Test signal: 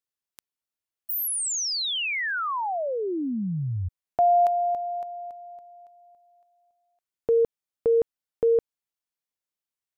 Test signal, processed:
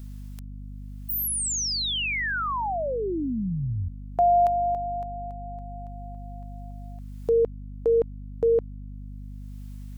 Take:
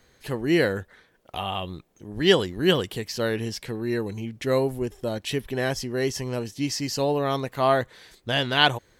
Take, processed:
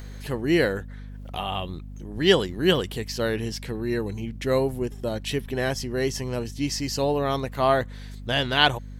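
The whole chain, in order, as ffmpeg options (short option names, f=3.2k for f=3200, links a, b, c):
-af "acompressor=mode=upward:threshold=-34dB:ratio=2.5:attack=0.56:release=518:knee=2.83:detection=peak,aeval=exprs='val(0)+0.0141*(sin(2*PI*50*n/s)+sin(2*PI*2*50*n/s)/2+sin(2*PI*3*50*n/s)/3+sin(2*PI*4*50*n/s)/4+sin(2*PI*5*50*n/s)/5)':c=same"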